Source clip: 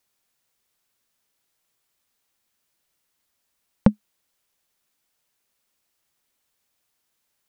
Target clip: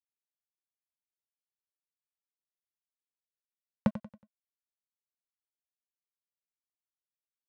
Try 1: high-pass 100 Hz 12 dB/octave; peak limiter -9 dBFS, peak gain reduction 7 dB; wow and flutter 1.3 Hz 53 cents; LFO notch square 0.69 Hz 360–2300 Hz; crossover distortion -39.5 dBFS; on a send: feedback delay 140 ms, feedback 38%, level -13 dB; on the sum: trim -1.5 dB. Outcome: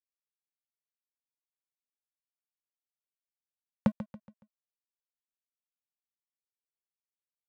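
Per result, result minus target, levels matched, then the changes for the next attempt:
echo 48 ms late; crossover distortion: distortion -5 dB
change: feedback delay 92 ms, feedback 38%, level -13 dB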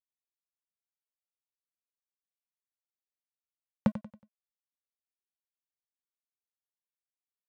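crossover distortion: distortion -5 dB
change: crossover distortion -33 dBFS

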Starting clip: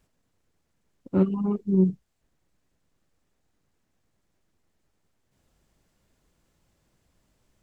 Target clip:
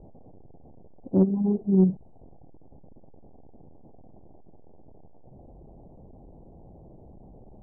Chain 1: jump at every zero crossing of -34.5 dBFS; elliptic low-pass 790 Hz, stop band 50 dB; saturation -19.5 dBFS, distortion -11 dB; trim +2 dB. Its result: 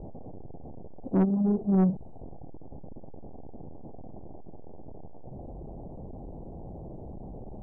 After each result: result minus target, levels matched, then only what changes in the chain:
saturation: distortion +15 dB; jump at every zero crossing: distortion +8 dB
change: saturation -9 dBFS, distortion -26 dB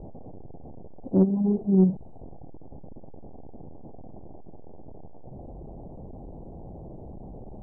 jump at every zero crossing: distortion +8 dB
change: jump at every zero crossing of -42.5 dBFS

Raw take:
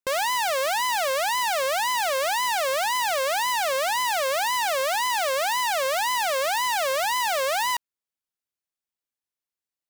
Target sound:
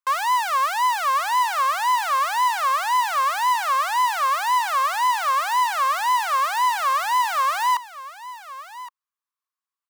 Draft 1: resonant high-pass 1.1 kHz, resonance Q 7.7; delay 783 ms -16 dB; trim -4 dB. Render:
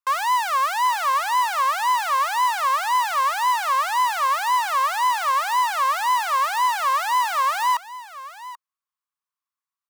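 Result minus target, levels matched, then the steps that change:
echo 334 ms early
change: delay 1117 ms -16 dB

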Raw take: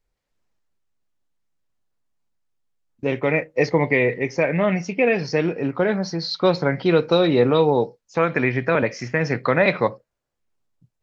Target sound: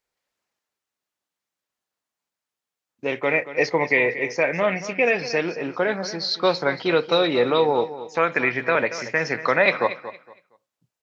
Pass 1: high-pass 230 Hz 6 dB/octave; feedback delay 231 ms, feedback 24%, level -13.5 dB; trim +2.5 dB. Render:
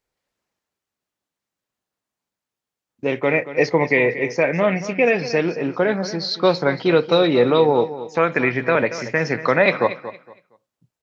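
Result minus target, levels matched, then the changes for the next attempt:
250 Hz band +3.5 dB
change: high-pass 690 Hz 6 dB/octave

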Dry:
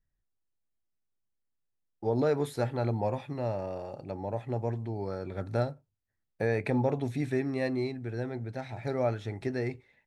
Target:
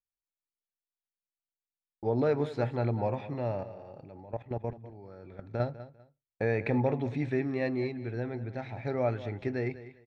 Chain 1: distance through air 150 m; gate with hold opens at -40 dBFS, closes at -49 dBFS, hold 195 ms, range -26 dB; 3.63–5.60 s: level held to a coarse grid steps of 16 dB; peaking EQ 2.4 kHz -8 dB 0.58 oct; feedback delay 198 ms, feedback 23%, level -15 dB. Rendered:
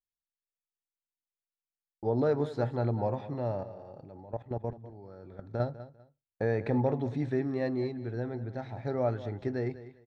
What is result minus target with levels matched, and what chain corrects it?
2 kHz band -4.5 dB
distance through air 150 m; gate with hold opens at -40 dBFS, closes at -49 dBFS, hold 195 ms, range -26 dB; 3.63–5.60 s: level held to a coarse grid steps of 16 dB; peaking EQ 2.4 kHz +3.5 dB 0.58 oct; feedback delay 198 ms, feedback 23%, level -15 dB

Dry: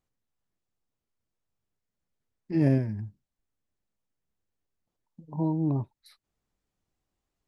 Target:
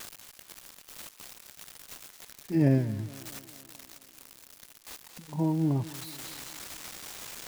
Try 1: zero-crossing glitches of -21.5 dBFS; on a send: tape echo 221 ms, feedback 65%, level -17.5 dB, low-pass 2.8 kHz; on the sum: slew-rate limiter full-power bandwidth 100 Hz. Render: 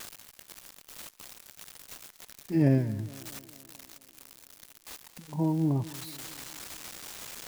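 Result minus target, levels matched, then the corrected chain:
zero-crossing glitches: distortion -9 dB
zero-crossing glitches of -12 dBFS; on a send: tape echo 221 ms, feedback 65%, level -17.5 dB, low-pass 2.8 kHz; on the sum: slew-rate limiter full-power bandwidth 100 Hz

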